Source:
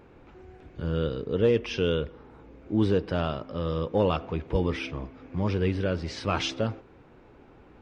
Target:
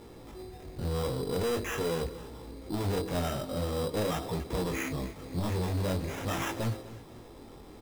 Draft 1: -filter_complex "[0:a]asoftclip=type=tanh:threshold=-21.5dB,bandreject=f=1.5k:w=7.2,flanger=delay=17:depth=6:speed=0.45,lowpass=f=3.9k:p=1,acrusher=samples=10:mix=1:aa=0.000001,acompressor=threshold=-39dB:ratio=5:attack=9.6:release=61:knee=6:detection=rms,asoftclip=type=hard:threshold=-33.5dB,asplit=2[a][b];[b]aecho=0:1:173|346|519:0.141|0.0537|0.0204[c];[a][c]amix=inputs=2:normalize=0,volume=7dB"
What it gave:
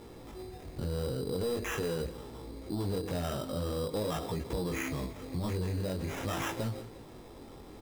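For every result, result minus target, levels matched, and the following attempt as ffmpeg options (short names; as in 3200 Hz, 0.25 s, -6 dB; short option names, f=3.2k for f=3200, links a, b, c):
compressor: peak gain reduction +12.5 dB; echo 80 ms early; soft clip: distortion -7 dB
-filter_complex "[0:a]asoftclip=type=tanh:threshold=-21.5dB,bandreject=f=1.5k:w=7.2,flanger=delay=17:depth=6:speed=0.45,lowpass=f=3.9k:p=1,acrusher=samples=10:mix=1:aa=0.000001,asoftclip=type=hard:threshold=-33.5dB,asplit=2[a][b];[b]aecho=0:1:173|346|519:0.141|0.0537|0.0204[c];[a][c]amix=inputs=2:normalize=0,volume=7dB"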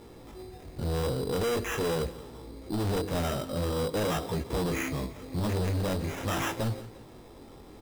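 echo 80 ms early; soft clip: distortion -7 dB
-filter_complex "[0:a]asoftclip=type=tanh:threshold=-21.5dB,bandreject=f=1.5k:w=7.2,flanger=delay=17:depth=6:speed=0.45,lowpass=f=3.9k:p=1,acrusher=samples=10:mix=1:aa=0.000001,asoftclip=type=hard:threshold=-33.5dB,asplit=2[a][b];[b]aecho=0:1:253|506|759:0.141|0.0537|0.0204[c];[a][c]amix=inputs=2:normalize=0,volume=7dB"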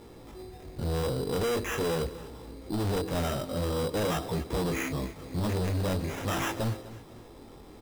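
soft clip: distortion -7 dB
-filter_complex "[0:a]asoftclip=type=tanh:threshold=-31.5dB,bandreject=f=1.5k:w=7.2,flanger=delay=17:depth=6:speed=0.45,lowpass=f=3.9k:p=1,acrusher=samples=10:mix=1:aa=0.000001,asoftclip=type=hard:threshold=-33.5dB,asplit=2[a][b];[b]aecho=0:1:253|506|759:0.141|0.0537|0.0204[c];[a][c]amix=inputs=2:normalize=0,volume=7dB"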